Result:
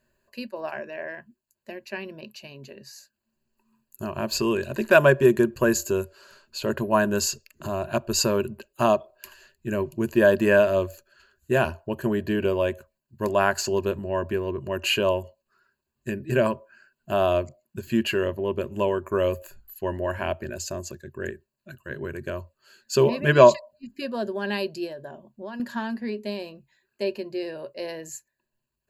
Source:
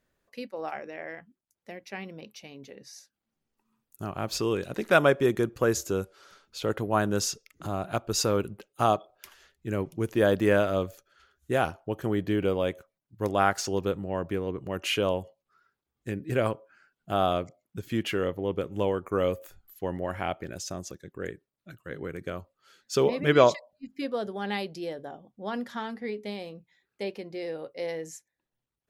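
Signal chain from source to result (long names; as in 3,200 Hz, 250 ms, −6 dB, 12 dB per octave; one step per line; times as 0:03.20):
EQ curve with evenly spaced ripples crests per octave 1.4, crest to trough 13 dB
0:24.86–0:25.60: downward compressor 6 to 1, threshold −36 dBFS, peak gain reduction 10 dB
level +2 dB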